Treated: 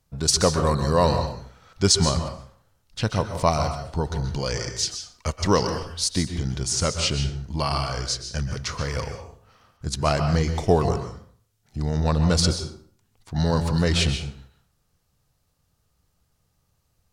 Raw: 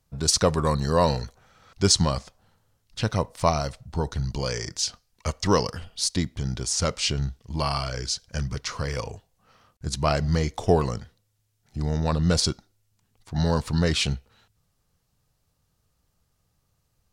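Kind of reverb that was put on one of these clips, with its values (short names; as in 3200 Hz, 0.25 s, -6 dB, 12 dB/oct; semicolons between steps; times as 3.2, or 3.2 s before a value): plate-style reverb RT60 0.53 s, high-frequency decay 0.7×, pre-delay 0.115 s, DRR 7 dB; gain +1 dB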